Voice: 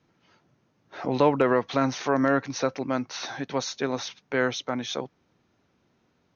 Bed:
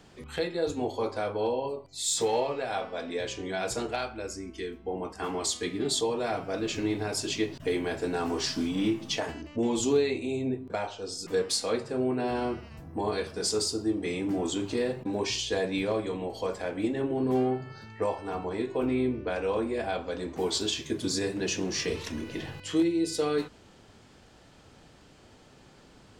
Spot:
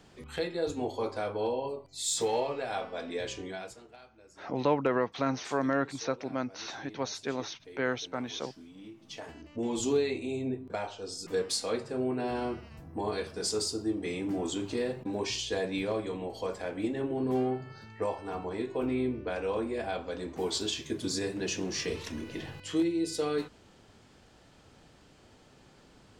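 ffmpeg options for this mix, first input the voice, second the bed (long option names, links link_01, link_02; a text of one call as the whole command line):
ffmpeg -i stem1.wav -i stem2.wav -filter_complex "[0:a]adelay=3450,volume=-6dB[link_01];[1:a]volume=15.5dB,afade=type=out:start_time=3.36:duration=0.4:silence=0.11885,afade=type=in:start_time=8.95:duration=0.93:silence=0.125893[link_02];[link_01][link_02]amix=inputs=2:normalize=0" out.wav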